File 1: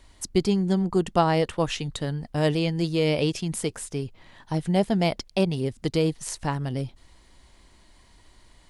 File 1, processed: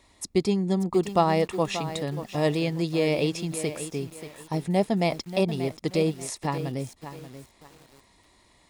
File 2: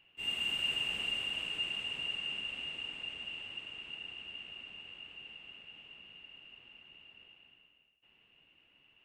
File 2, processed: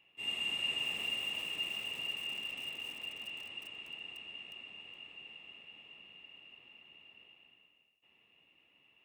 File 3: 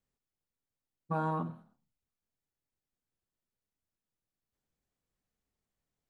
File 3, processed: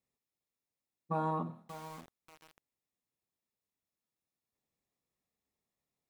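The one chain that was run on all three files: notch comb 1500 Hz; lo-fi delay 0.584 s, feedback 35%, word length 7-bit, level -11 dB

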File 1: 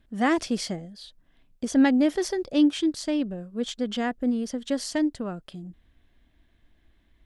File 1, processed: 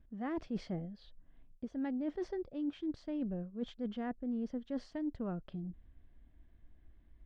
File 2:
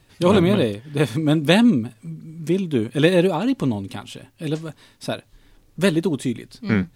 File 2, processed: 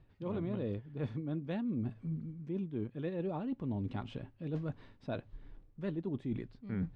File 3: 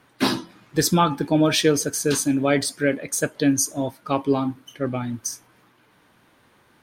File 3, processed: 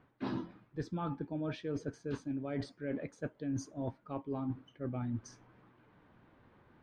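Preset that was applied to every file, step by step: tape spacing loss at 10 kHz 37 dB; reverse; compressor 10:1, threshold -32 dBFS; reverse; low shelf 110 Hz +7 dB; gain -3.5 dB

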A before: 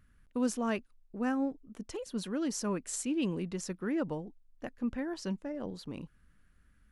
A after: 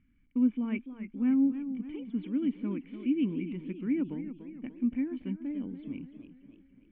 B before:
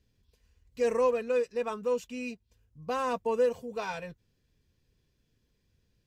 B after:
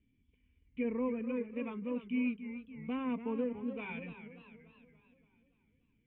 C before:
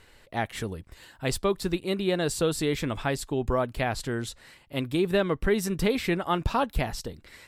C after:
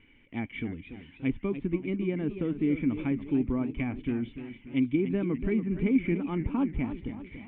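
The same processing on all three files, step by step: treble ducked by the level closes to 1500 Hz, closed at -24 dBFS; vocal tract filter i; band shelf 1400 Hz +11.5 dB; warbling echo 0.288 s, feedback 52%, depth 137 cents, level -11 dB; gain +7.5 dB

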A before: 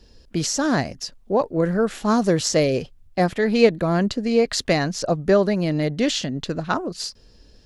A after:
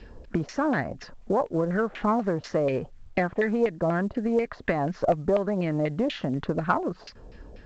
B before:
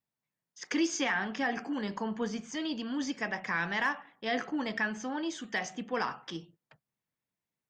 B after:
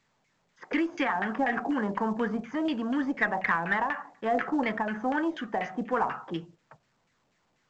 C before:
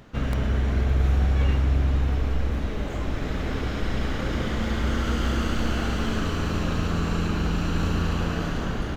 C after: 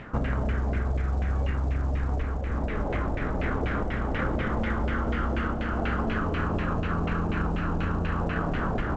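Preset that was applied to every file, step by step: compressor 8:1, threshold -30 dBFS; LFO low-pass saw down 4.1 Hz 620–2500 Hz; added harmonics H 4 -27 dB, 5 -37 dB, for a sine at -14 dBFS; gain +5.5 dB; A-law 128 kbps 16000 Hz

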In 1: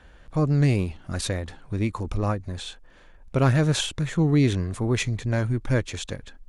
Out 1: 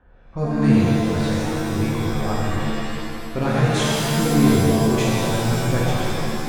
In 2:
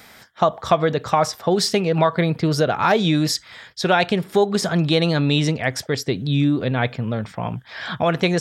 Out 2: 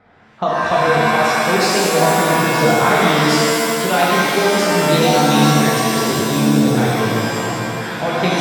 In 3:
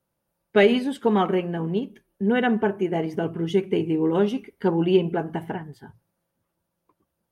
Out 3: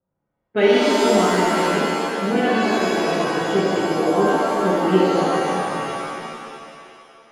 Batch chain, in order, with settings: low-pass opened by the level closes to 1200 Hz, open at -18 dBFS; shimmer reverb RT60 2.3 s, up +7 st, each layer -2 dB, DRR -5.5 dB; gain -4.5 dB

